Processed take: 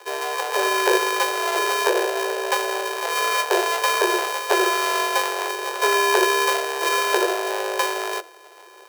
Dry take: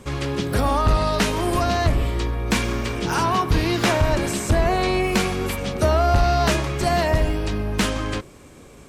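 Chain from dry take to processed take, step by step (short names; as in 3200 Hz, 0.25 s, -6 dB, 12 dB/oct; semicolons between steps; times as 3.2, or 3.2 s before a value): sample sorter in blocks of 64 samples; frequency shift +330 Hz; formant shift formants +3 st; gain -1.5 dB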